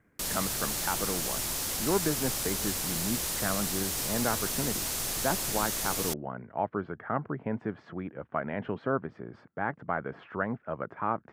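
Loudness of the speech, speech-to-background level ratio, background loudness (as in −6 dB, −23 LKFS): −34.5 LKFS, −4.5 dB, −30.0 LKFS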